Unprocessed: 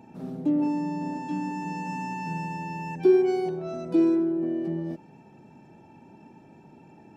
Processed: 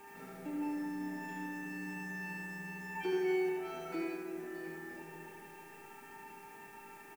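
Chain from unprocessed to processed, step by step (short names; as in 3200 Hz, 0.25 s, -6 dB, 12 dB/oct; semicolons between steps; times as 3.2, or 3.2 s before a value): resonator 450 Hz, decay 0.3 s, harmonics all, mix 90%; in parallel at 0 dB: compressor 6:1, threshold -52 dBFS, peak gain reduction 18.5 dB; on the sum: low shelf 410 Hz -6 dB; requantised 12-bit, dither triangular; ten-band EQ 125 Hz -8 dB, 250 Hz -4 dB, 500 Hz -6 dB, 1000 Hz -3 dB, 2000 Hz +10 dB, 4000 Hz -7 dB; tapped delay 75/619 ms -3.5/-10.5 dB; on a send at -3.5 dB: reverb RT60 2.1 s, pre-delay 35 ms; on the sum: buzz 400 Hz, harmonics 4, -66 dBFS -4 dB/oct; gain +7 dB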